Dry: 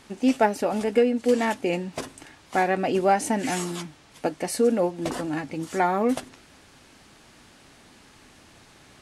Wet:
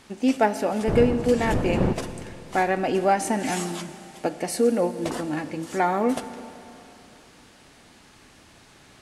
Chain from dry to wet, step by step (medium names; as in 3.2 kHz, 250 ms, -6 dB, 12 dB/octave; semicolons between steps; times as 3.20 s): 0.87–1.92 s: wind noise 330 Hz -26 dBFS; Schroeder reverb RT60 3.1 s, combs from 26 ms, DRR 11.5 dB